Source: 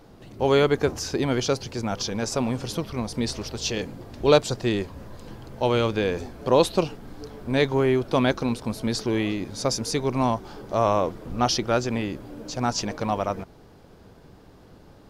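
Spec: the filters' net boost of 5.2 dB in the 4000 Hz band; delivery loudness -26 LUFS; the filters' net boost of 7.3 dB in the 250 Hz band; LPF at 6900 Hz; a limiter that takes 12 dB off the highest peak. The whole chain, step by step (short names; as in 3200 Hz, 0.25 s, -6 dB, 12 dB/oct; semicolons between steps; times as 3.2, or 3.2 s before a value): LPF 6900 Hz; bell 250 Hz +8.5 dB; bell 4000 Hz +7 dB; gain -2 dB; limiter -13.5 dBFS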